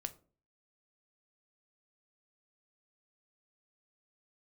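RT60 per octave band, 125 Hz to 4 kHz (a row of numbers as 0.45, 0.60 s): 0.55, 0.55, 0.45, 0.35, 0.25, 0.25 s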